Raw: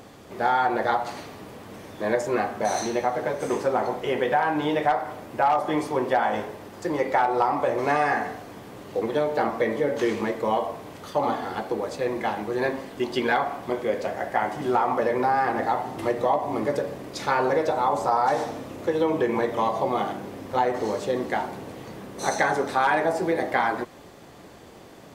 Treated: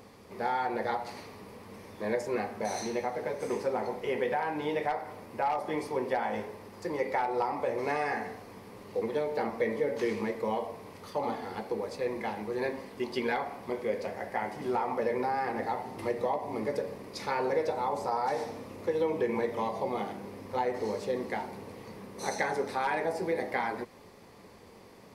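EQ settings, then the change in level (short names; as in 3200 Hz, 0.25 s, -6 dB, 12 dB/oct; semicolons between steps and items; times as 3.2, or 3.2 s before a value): dynamic EQ 1100 Hz, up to -7 dB, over -41 dBFS, Q 3.6; ripple EQ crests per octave 0.88, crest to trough 6 dB; -7.0 dB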